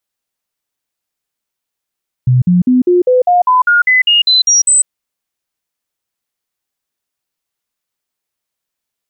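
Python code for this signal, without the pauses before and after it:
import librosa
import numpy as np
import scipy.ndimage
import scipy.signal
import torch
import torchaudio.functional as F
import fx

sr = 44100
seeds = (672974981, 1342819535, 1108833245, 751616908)

y = fx.stepped_sweep(sr, from_hz=126.0, direction='up', per_octave=2, tones=13, dwell_s=0.15, gap_s=0.05, level_db=-6.0)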